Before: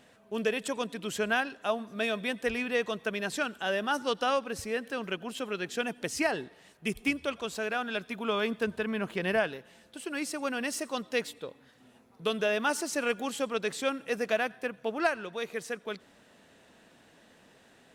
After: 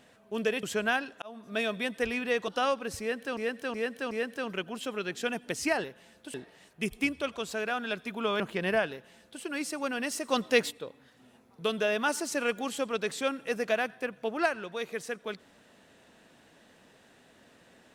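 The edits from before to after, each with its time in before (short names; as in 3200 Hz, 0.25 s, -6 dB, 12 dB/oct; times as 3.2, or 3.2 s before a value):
0.63–1.07 cut
1.66–2 fade in
2.92–4.13 cut
4.65–5.02 loop, 4 plays
8.44–9.01 cut
9.53–10.03 copy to 6.38
10.9–11.32 gain +6 dB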